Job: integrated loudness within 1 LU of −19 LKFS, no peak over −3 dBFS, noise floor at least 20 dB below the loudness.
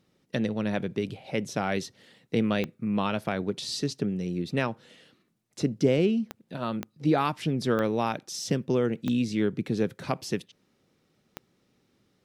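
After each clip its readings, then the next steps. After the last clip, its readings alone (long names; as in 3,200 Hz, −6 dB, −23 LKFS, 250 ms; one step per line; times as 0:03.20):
number of clicks 6; integrated loudness −29.0 LKFS; sample peak −11.0 dBFS; target loudness −19.0 LKFS
→ click removal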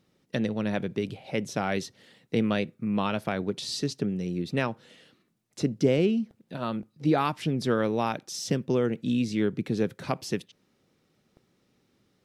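number of clicks 0; integrated loudness −29.0 LKFS; sample peak −11.0 dBFS; target loudness −19.0 LKFS
→ level +10 dB
brickwall limiter −3 dBFS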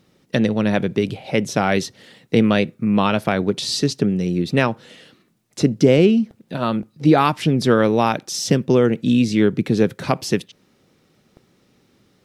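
integrated loudness −19.0 LKFS; sample peak −3.0 dBFS; background noise floor −61 dBFS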